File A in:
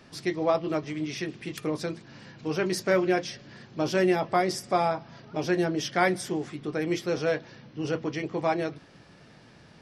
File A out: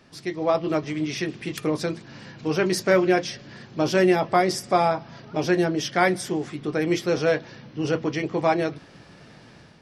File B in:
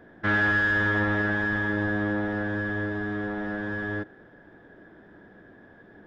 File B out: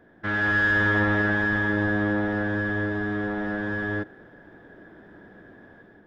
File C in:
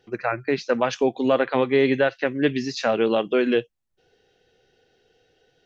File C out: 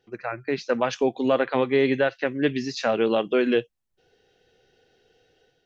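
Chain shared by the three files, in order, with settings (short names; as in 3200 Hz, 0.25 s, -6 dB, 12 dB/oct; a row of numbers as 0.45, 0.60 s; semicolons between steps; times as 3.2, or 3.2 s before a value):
AGC gain up to 7 dB; match loudness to -24 LUFS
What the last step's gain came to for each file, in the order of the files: -2.0, -4.5, -6.5 dB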